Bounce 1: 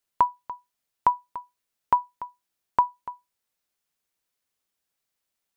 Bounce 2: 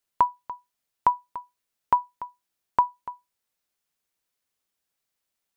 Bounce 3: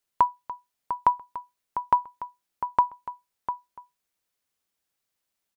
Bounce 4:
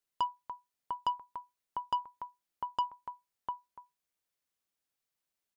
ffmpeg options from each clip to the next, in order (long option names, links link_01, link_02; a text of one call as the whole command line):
ffmpeg -i in.wav -af anull out.wav
ffmpeg -i in.wav -filter_complex "[0:a]asplit=2[link_01][link_02];[link_02]adelay=699.7,volume=-9dB,highshelf=frequency=4000:gain=-15.7[link_03];[link_01][link_03]amix=inputs=2:normalize=0" out.wav
ffmpeg -i in.wav -af "asoftclip=type=tanh:threshold=-18dB,volume=-6.5dB" out.wav